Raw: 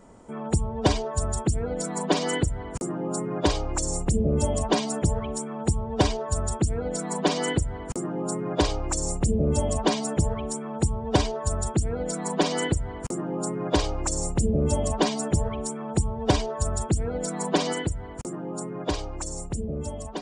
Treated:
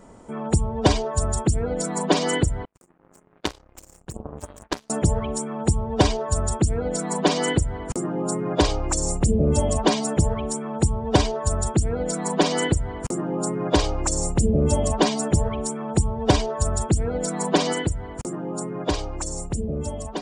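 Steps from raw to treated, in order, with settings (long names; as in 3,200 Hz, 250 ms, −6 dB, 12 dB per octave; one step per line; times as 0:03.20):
0:02.65–0:04.90: power curve on the samples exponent 3
level +3.5 dB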